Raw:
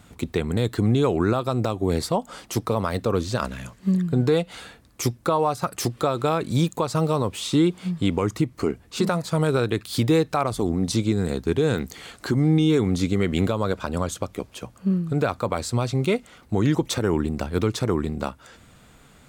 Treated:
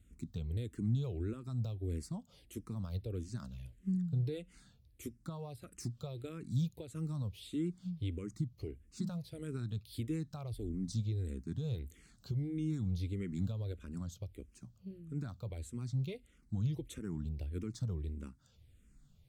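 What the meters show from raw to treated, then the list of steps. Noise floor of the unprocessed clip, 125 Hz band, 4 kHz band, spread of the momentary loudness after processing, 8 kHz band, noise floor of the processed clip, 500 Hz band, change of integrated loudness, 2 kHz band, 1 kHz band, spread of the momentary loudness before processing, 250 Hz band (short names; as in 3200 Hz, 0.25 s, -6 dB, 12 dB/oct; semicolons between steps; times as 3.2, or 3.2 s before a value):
-53 dBFS, -11.5 dB, -22.0 dB, 11 LU, -20.0 dB, -66 dBFS, -24.0 dB, -16.0 dB, -26.0 dB, -31.0 dB, 8 LU, -17.0 dB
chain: passive tone stack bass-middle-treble 10-0-1; endless phaser -1.6 Hz; gain +3.5 dB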